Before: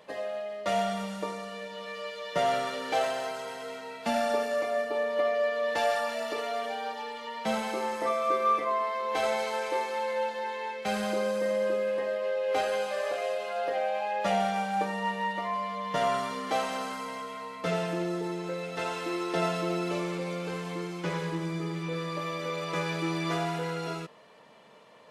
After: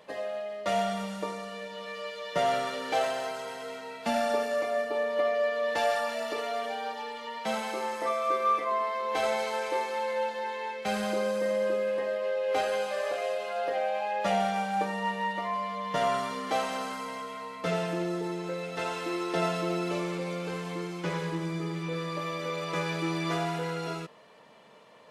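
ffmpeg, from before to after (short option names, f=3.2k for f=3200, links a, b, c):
-filter_complex "[0:a]asettb=1/sr,asplit=3[a][b][c];[a]atrim=end=7.384[d];[b]atrim=start=7.38:end=8.72,asetpts=PTS-STARTPTS,afade=t=in:d=0.004:c=qsin,afade=t=out:st=1.336:d=0.004:c=qsin,lowshelf=f=290:g=-7[e];[c]atrim=start=8.716[f];[d][e]acrossfade=d=0.004:c1=hsin:c2=qsin[g];[g][f]acrossfade=d=0.004:c1=qsin:c2=hsin"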